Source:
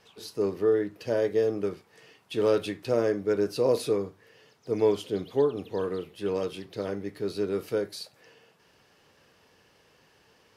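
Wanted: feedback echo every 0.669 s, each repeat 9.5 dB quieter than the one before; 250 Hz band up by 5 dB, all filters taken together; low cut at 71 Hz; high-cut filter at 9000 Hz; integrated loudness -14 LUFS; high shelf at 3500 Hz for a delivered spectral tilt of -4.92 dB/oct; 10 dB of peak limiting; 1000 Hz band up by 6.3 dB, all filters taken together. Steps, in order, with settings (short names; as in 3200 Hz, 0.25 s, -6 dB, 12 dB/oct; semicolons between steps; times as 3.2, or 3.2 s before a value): HPF 71 Hz; LPF 9000 Hz; bell 250 Hz +6.5 dB; bell 1000 Hz +7 dB; high shelf 3500 Hz +5 dB; limiter -18.5 dBFS; feedback echo 0.669 s, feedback 33%, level -9.5 dB; gain +15.5 dB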